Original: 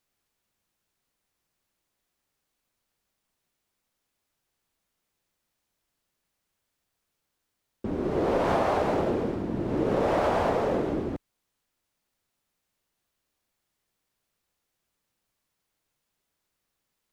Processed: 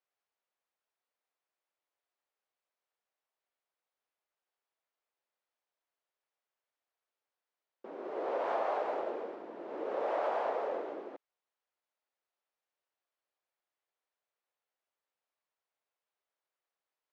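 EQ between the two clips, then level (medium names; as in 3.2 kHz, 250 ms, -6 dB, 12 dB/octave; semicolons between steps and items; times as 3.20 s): ladder high-pass 390 Hz, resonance 20%; distance through air 62 m; treble shelf 4.1 kHz -10 dB; -2.5 dB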